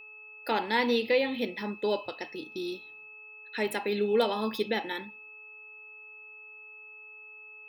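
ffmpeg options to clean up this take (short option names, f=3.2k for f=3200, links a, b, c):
-af "bandreject=f=427:t=h:w=4,bandreject=f=854:t=h:w=4,bandreject=f=1.281k:t=h:w=4,bandreject=f=2.6k:w=30"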